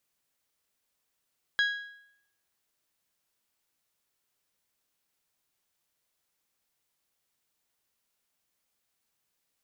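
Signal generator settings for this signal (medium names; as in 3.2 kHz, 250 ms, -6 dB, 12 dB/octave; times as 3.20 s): metal hit bell, lowest mode 1.65 kHz, decay 0.74 s, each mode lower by 7 dB, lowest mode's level -21 dB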